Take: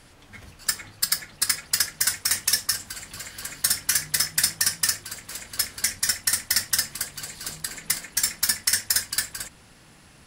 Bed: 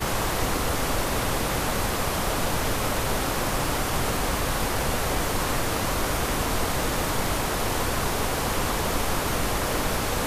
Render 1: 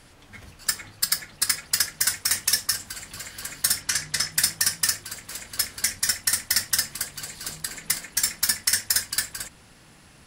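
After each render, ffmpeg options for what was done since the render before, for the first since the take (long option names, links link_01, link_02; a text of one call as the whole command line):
ffmpeg -i in.wav -filter_complex "[0:a]asettb=1/sr,asplit=3[link_01][link_02][link_03];[link_01]atrim=end=3.824[link_04];[link_02]atrim=start=3.82:end=4.32,asetpts=PTS-STARTPTS,afade=type=in:duration=0.004:curve=qsin,afade=type=out:start_time=0.496:duration=0.004:curve=qsin,lowpass=8200[link_05];[link_03]atrim=start=4.316[link_06];[link_04][link_05]acrossfade=duration=0.004:curve1=hsin:curve2=qsin[link_07];[link_07][link_06]acrossfade=duration=0.004:curve1=qsin:curve2=hsin" out.wav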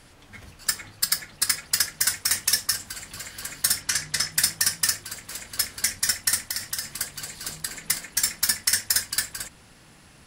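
ffmpeg -i in.wav -filter_complex "[0:a]asettb=1/sr,asplit=3[link_01][link_02][link_03];[link_01]atrim=end=6.434[link_04];[link_02]atrim=start=6.43:end=7,asetpts=PTS-STARTPTS,afade=type=in:duration=0.004:curve=qsin,afade=type=out:start_time=0.566:duration=0.004:curve=qsin,acompressor=threshold=-24dB:ratio=6:attack=3.2:release=140:knee=1:detection=peak[link_05];[link_03]atrim=start=6.996[link_06];[link_04][link_05]acrossfade=duration=0.004:curve1=hsin:curve2=qsin[link_07];[link_07][link_06]acrossfade=duration=0.004:curve1=qsin:curve2=hsin" out.wav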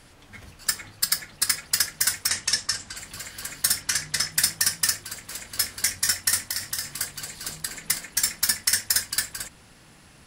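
ffmpeg -i in.wav -filter_complex "[0:a]asettb=1/sr,asplit=3[link_01][link_02][link_03];[link_01]atrim=end=2.284[link_04];[link_02]atrim=start=2.28:end=2.97,asetpts=PTS-STARTPTS,afade=type=in:duration=0.004:curve=qsin,afade=type=out:start_time=0.686:duration=0.004:curve=qsin,lowpass=frequency=8500:width=0.5412,lowpass=frequency=8500:width=1.3066[link_05];[link_03]atrim=start=2.966[link_06];[link_04][link_05]acrossfade=duration=0.004:curve1=hsin:curve2=qsin[link_07];[link_07][link_06]acrossfade=duration=0.004:curve1=qsin:curve2=hsin,asettb=1/sr,asplit=3[link_08][link_09][link_10];[link_08]atrim=end=5.514[link_11];[link_09]atrim=start=5.51:end=7.12,asetpts=PTS-STARTPTS,afade=type=in:duration=0.004:curve=qsin,afade=type=out:start_time=1.606:duration=0.004:curve=qsin,asplit=2[link_12][link_13];[link_13]adelay=21,volume=-8.5dB[link_14];[link_12][link_14]amix=inputs=2:normalize=0,atrim=end_sample=71001[link_15];[link_10]atrim=start=7.116[link_16];[link_11][link_15]acrossfade=duration=0.004:curve1=hsin:curve2=qsin[link_17];[link_17][link_16]acrossfade=duration=0.004:curve1=qsin:curve2=hsin" out.wav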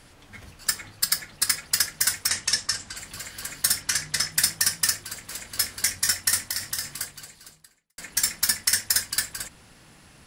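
ffmpeg -i in.wav -filter_complex "[0:a]asplit=2[link_01][link_02];[link_01]atrim=end=7.98,asetpts=PTS-STARTPTS,afade=type=out:start_time=6.85:duration=1.13:curve=qua[link_03];[link_02]atrim=start=7.98,asetpts=PTS-STARTPTS,afade=type=in:duration=0.004:curve=hsin[link_04];[link_03][link_04]concat=n=2:v=0:a=1" out.wav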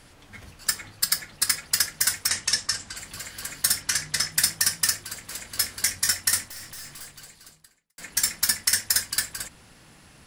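ffmpeg -i in.wav -filter_complex "[0:a]asettb=1/sr,asplit=3[link_01][link_02][link_03];[link_01]atrim=end=6.454[link_04];[link_02]atrim=start=6.45:end=8.01,asetpts=PTS-STARTPTS,afade=type=in:duration=0.004:curve=qsin,afade=type=out:start_time=1.556:duration=0.004:curve=qsin,aeval=exprs='(tanh(70.8*val(0)+0.3)-tanh(0.3))/70.8':channel_layout=same[link_05];[link_03]atrim=start=8.006[link_06];[link_04][link_05]acrossfade=duration=0.004:curve1=hsin:curve2=qsin[link_07];[link_07][link_06]acrossfade=duration=0.004:curve1=qsin:curve2=hsin" out.wav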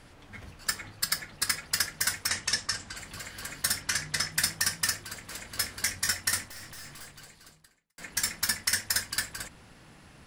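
ffmpeg -i in.wav -af "highshelf=frequency=4100:gain=-8" out.wav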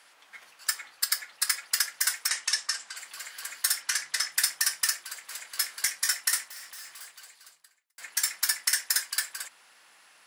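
ffmpeg -i in.wav -af "highpass=960,highshelf=frequency=8600:gain=5" out.wav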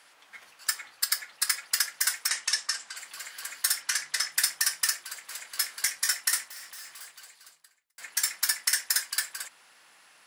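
ffmpeg -i in.wav -af "lowshelf=frequency=230:gain=5" out.wav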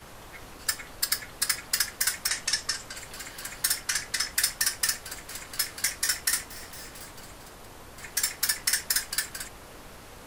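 ffmpeg -i in.wav -i bed.wav -filter_complex "[1:a]volume=-21dB[link_01];[0:a][link_01]amix=inputs=2:normalize=0" out.wav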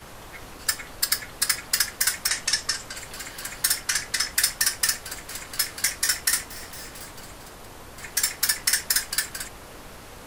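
ffmpeg -i in.wav -af "volume=3.5dB" out.wav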